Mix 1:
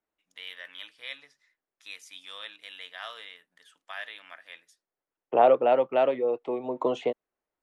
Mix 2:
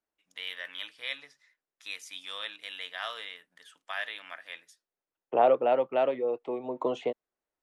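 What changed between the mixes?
first voice +3.5 dB
second voice −3.0 dB

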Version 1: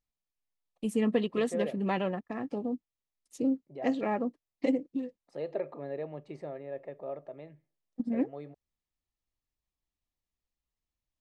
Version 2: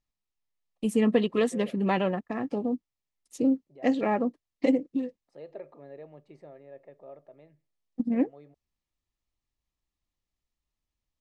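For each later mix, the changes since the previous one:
first voice +4.5 dB
second voice −8.0 dB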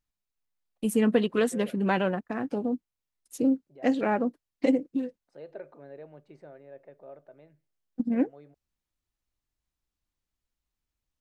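first voice: remove low-pass filter 7,900 Hz 12 dB per octave
master: remove Butterworth band-reject 1,500 Hz, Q 6.6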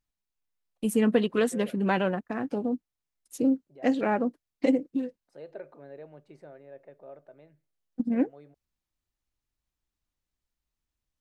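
second voice: remove high-frequency loss of the air 51 metres

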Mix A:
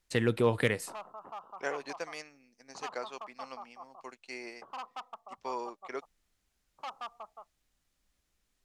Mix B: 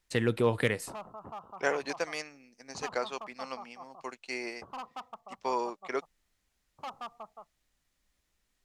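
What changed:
second voice +6.0 dB
background: remove meter weighting curve A

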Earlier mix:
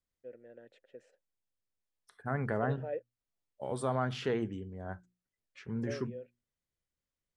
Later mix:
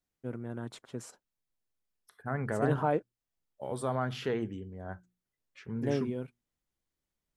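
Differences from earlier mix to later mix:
first voice: remove formant filter e
master: remove Butterworth low-pass 10,000 Hz 36 dB per octave

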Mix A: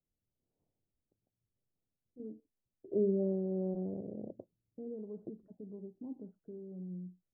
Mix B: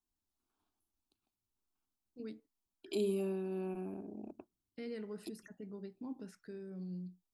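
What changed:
second voice: add phaser with its sweep stopped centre 520 Hz, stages 6
master: remove inverse Chebyshev low-pass filter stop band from 2,300 Hz, stop band 60 dB

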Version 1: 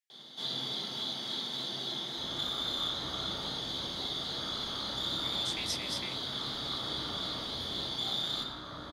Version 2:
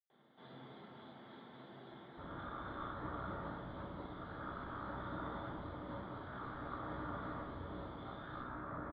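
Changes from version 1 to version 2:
speech: muted
first sound −9.5 dB
master: add low-pass filter 1,900 Hz 24 dB per octave

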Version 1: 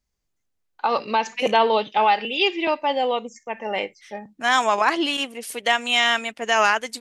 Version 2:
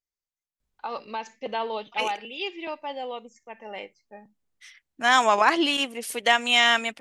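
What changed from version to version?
first voice −11.5 dB
second voice: entry +0.60 s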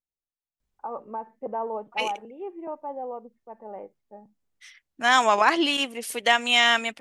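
first voice: add low-pass filter 1,100 Hz 24 dB per octave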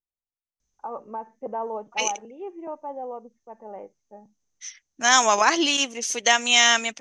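master: add low-pass with resonance 6,200 Hz, resonance Q 13

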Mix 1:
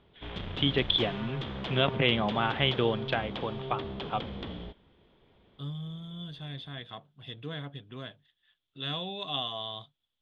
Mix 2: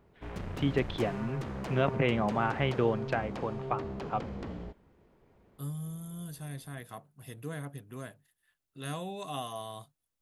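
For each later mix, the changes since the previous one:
second voice: add high-shelf EQ 4,800 Hz +10 dB
master: remove low-pass with resonance 3,400 Hz, resonance Q 9.8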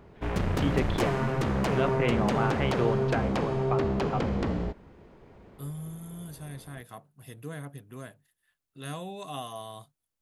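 background +11.0 dB

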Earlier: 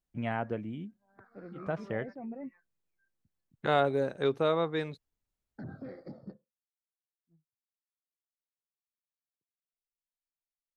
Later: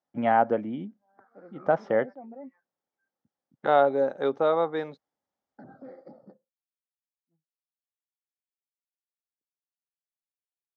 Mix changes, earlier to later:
first voice +6.5 dB
background −5.0 dB
master: add loudspeaker in its box 210–5,700 Hz, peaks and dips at 260 Hz +4 dB, 550 Hz +7 dB, 810 Hz +10 dB, 1,300 Hz +4 dB, 2,600 Hz −8 dB, 4,200 Hz −6 dB

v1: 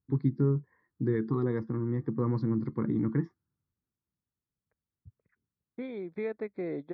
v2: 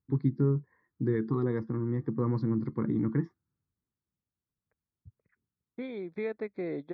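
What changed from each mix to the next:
second voice: add high-shelf EQ 4,100 Hz +9 dB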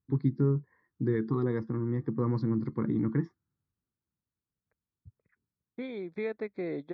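master: add high-shelf EQ 4,000 Hz +5.5 dB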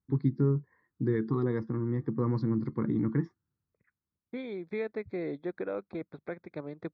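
second voice: entry −1.45 s

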